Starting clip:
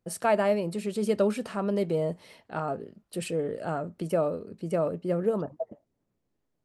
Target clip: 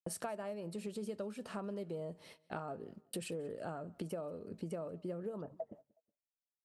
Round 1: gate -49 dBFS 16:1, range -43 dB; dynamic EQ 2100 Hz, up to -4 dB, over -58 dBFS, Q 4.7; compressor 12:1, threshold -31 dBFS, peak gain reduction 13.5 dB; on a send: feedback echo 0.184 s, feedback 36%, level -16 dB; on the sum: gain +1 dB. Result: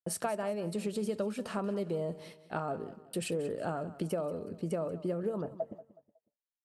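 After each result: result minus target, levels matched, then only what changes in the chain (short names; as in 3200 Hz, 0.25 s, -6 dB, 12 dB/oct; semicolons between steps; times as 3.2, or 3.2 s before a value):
compressor: peak gain reduction -8 dB; echo-to-direct +8.5 dB
change: compressor 12:1, threshold -39.5 dBFS, peak gain reduction 21 dB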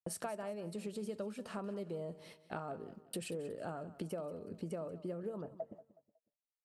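echo-to-direct +8.5 dB
change: feedback echo 0.184 s, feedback 36%, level -24.5 dB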